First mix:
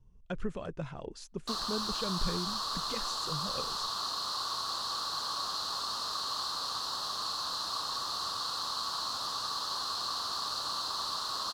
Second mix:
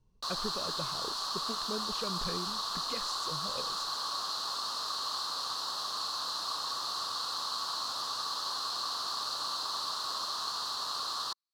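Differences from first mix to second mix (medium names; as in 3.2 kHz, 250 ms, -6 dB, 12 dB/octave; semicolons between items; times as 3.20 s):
background: entry -1.25 s; master: add bass shelf 170 Hz -10 dB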